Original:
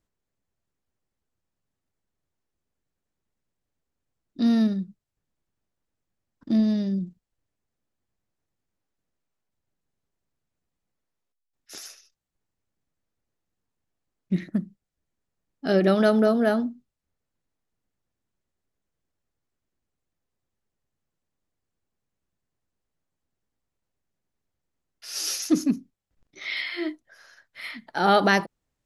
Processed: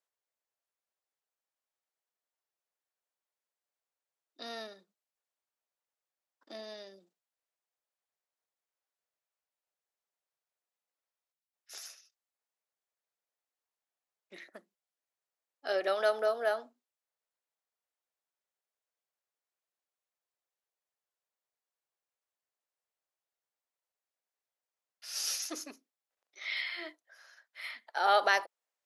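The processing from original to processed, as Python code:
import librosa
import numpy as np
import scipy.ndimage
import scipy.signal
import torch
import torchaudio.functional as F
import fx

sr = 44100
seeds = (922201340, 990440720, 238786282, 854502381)

y = scipy.signal.sosfilt(scipy.signal.butter(4, 520.0, 'highpass', fs=sr, output='sos'), x)
y = F.gain(torch.from_numpy(y), -5.5).numpy()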